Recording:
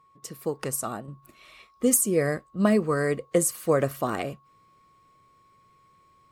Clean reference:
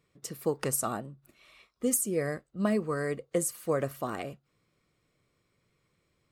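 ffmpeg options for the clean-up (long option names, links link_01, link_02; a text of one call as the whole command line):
ffmpeg -i in.wav -af "bandreject=frequency=1100:width=30,asetnsamples=nb_out_samples=441:pad=0,asendcmd='1.08 volume volume -6.5dB',volume=0dB" out.wav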